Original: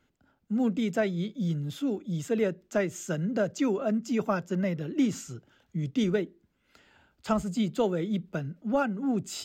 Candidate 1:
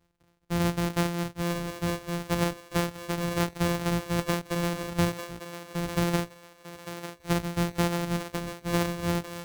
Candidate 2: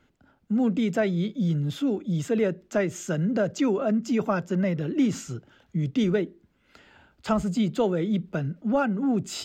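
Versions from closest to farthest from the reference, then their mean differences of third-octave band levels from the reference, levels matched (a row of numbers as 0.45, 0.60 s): 2, 1; 1.5, 16.0 dB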